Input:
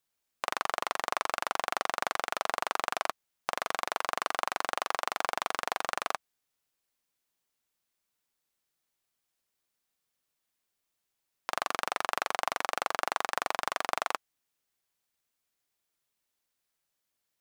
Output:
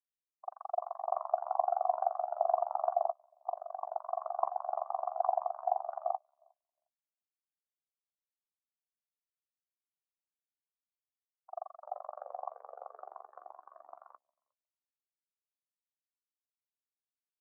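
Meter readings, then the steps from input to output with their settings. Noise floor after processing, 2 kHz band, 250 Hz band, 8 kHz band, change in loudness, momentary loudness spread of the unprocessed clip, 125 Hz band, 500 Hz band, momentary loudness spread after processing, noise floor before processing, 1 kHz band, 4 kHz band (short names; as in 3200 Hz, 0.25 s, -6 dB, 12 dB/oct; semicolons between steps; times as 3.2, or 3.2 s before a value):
under -85 dBFS, under -30 dB, under -35 dB, under -35 dB, -3.0 dB, 4 LU, under -40 dB, +1.5 dB, 18 LU, -83 dBFS, -2.0 dB, under -40 dB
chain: frequency-shifting echo 0.358 s, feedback 55%, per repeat -50 Hz, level -10 dB; high-pass sweep 660 Hz -> 160 Hz, 11.55–15.3; spectral expander 4:1; gain -5.5 dB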